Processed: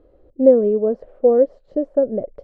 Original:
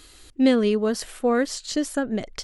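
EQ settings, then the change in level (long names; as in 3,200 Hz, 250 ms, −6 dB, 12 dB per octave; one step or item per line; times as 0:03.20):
low-pass with resonance 550 Hz, resonance Q 6.4
−2.5 dB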